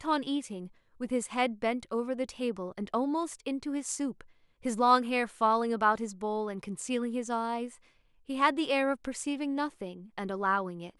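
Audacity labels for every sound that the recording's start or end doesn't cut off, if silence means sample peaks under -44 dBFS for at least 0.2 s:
1.000000	4.210000	sound
4.650000	7.750000	sound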